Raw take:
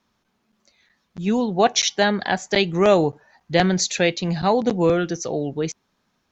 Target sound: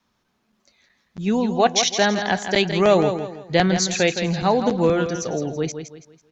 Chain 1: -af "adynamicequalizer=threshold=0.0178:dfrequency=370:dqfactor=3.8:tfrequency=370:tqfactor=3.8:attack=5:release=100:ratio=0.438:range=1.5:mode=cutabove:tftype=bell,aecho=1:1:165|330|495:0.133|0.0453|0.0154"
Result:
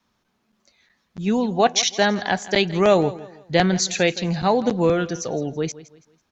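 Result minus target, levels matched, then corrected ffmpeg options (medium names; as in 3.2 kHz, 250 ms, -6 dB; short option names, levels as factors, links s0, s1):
echo-to-direct -9 dB
-af "adynamicequalizer=threshold=0.0178:dfrequency=370:dqfactor=3.8:tfrequency=370:tqfactor=3.8:attack=5:release=100:ratio=0.438:range=1.5:mode=cutabove:tftype=bell,aecho=1:1:165|330|495|660:0.376|0.128|0.0434|0.0148"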